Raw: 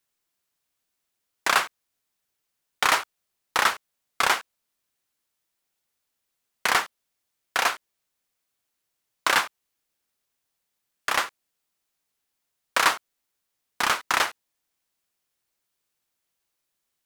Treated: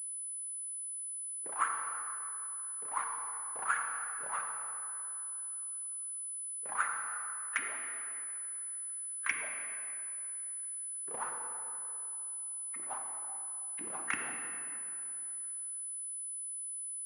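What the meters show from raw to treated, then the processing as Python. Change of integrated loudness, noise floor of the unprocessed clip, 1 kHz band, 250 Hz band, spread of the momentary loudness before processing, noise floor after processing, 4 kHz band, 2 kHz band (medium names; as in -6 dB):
-12.0 dB, -80 dBFS, -12.0 dB, -12.0 dB, 12 LU, -41 dBFS, -28.5 dB, -13.0 dB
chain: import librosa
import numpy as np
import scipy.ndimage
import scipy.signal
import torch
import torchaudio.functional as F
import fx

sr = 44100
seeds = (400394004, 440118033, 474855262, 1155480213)

y = fx.hpss_only(x, sr, part='percussive')
y = fx.over_compress(y, sr, threshold_db=-29.0, ratio=-1.0)
y = fx.wow_flutter(y, sr, seeds[0], rate_hz=2.1, depth_cents=100.0)
y = fx.filter_lfo_lowpass(y, sr, shape='saw_up', hz=2.9, low_hz=270.0, high_hz=2400.0, q=5.2)
y = fx.peak_eq(y, sr, hz=650.0, db=-12.0, octaves=1.5)
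y = fx.dmg_crackle(y, sr, seeds[1], per_s=67.0, level_db=-54.0)
y = scipy.signal.sosfilt(scipy.signal.butter(2, 130.0, 'highpass', fs=sr, output='sos'), y)
y = fx.peak_eq(y, sr, hz=260.0, db=-7.0, octaves=2.4)
y = fx.rev_plate(y, sr, seeds[2], rt60_s=2.9, hf_ratio=0.6, predelay_ms=0, drr_db=1.5)
y = fx.pwm(y, sr, carrier_hz=10000.0)
y = F.gain(torch.from_numpy(y), -6.0).numpy()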